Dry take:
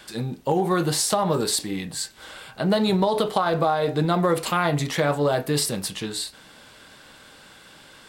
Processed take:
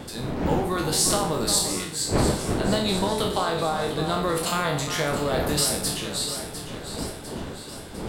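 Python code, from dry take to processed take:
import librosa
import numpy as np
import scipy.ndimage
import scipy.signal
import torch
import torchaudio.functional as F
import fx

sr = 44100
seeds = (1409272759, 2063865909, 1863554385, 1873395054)

p1 = fx.spec_trails(x, sr, decay_s=0.56)
p2 = fx.dmg_wind(p1, sr, seeds[0], corner_hz=390.0, level_db=-25.0)
p3 = fx.high_shelf(p2, sr, hz=2100.0, db=7.5)
p4 = p3 + fx.echo_alternate(p3, sr, ms=351, hz=2000.0, feedback_pct=75, wet_db=-8.0, dry=0)
y = p4 * librosa.db_to_amplitude(-7.0)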